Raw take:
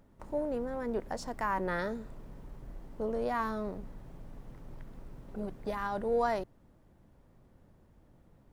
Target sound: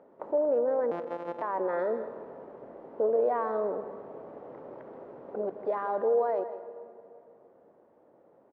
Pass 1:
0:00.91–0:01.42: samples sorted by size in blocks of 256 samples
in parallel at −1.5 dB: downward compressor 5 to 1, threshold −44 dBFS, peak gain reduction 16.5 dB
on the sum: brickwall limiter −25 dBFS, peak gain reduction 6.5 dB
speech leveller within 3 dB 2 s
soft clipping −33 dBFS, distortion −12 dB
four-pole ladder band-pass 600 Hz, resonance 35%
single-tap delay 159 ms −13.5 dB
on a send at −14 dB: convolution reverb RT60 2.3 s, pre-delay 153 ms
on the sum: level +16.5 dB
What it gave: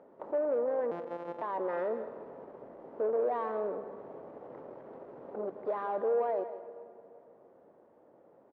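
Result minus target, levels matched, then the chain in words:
soft clipping: distortion +17 dB; downward compressor: peak gain reduction +5 dB
0:00.91–0:01.42: samples sorted by size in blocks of 256 samples
in parallel at −1.5 dB: downward compressor 5 to 1, threshold −37.5 dBFS, peak gain reduction 11.5 dB
on the sum: brickwall limiter −25 dBFS, peak gain reduction 7.5 dB
speech leveller within 3 dB 2 s
soft clipping −21 dBFS, distortion −29 dB
four-pole ladder band-pass 600 Hz, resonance 35%
single-tap delay 159 ms −13.5 dB
on a send at −14 dB: convolution reverb RT60 2.3 s, pre-delay 153 ms
on the sum: level +16.5 dB

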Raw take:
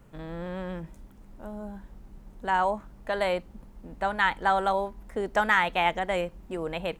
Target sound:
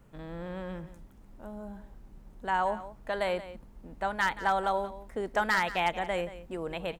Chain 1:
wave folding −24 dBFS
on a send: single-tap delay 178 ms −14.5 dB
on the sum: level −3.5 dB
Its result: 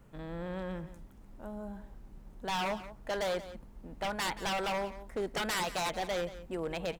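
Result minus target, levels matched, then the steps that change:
wave folding: distortion +20 dB
change: wave folding −13.5 dBFS

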